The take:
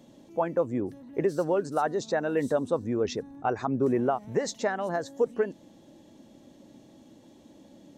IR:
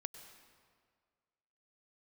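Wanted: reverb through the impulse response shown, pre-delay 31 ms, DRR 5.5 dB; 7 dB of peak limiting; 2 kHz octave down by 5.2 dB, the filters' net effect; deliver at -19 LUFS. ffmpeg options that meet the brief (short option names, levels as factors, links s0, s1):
-filter_complex "[0:a]equalizer=f=2000:t=o:g=-7,alimiter=limit=0.075:level=0:latency=1,asplit=2[s0][s1];[1:a]atrim=start_sample=2205,adelay=31[s2];[s1][s2]afir=irnorm=-1:irlink=0,volume=0.75[s3];[s0][s3]amix=inputs=2:normalize=0,volume=4.47"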